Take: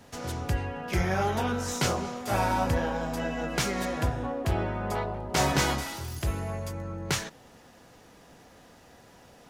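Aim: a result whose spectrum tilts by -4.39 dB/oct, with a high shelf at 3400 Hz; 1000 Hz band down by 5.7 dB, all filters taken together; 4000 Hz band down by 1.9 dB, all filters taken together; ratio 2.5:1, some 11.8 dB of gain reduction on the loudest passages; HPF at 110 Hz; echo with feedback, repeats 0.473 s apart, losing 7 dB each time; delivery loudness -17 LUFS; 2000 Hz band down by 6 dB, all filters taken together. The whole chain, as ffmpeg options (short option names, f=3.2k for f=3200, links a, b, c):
-af "highpass=110,equalizer=f=1k:t=o:g=-7,equalizer=f=2k:t=o:g=-6,highshelf=f=3.4k:g=7,equalizer=f=4k:t=o:g=-6,acompressor=threshold=-41dB:ratio=2.5,aecho=1:1:473|946|1419|1892|2365:0.447|0.201|0.0905|0.0407|0.0183,volume=22.5dB"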